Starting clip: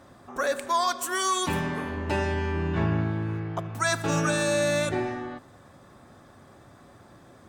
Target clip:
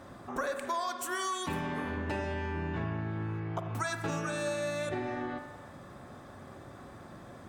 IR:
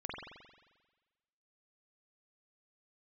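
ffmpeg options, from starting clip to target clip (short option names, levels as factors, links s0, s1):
-filter_complex "[0:a]acompressor=threshold=0.02:ratio=6,asplit=2[s0][s1];[1:a]atrim=start_sample=2205,lowpass=4100[s2];[s1][s2]afir=irnorm=-1:irlink=0,volume=0.562[s3];[s0][s3]amix=inputs=2:normalize=0"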